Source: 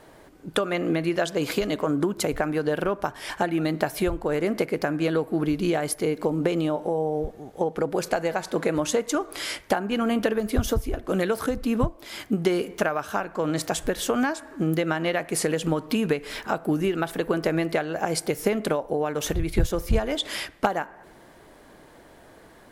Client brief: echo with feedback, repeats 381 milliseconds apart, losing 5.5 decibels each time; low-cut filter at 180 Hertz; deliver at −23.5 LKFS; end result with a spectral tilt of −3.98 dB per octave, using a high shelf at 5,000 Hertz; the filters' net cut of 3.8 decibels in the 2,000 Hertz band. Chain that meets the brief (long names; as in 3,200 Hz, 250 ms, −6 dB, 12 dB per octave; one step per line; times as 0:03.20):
high-pass filter 180 Hz
parametric band 2,000 Hz −6 dB
high-shelf EQ 5,000 Hz +6.5 dB
repeating echo 381 ms, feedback 53%, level −5.5 dB
level +2 dB